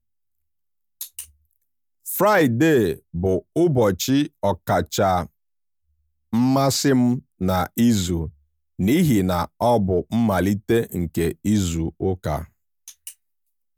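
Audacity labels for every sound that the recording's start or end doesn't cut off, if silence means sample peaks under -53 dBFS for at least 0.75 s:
1.010000	5.290000	sound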